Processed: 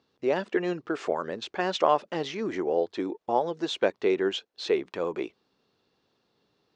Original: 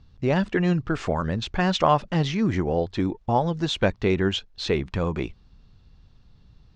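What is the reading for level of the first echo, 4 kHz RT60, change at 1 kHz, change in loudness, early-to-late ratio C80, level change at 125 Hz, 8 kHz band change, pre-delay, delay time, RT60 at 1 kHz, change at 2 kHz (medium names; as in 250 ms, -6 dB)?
no echo, no reverb, -3.5 dB, -4.0 dB, no reverb, -19.5 dB, no reading, no reverb, no echo, no reverb, -4.5 dB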